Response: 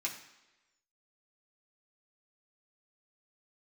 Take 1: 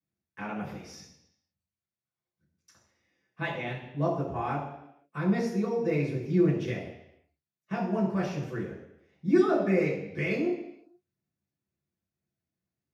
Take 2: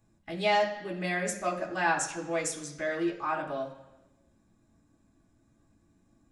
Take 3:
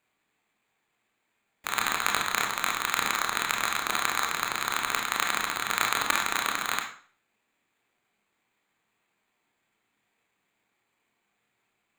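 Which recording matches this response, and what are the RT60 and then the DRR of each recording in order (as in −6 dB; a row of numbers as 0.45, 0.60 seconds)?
2; 0.80, 1.1, 0.50 seconds; −7.5, −3.0, 1.5 decibels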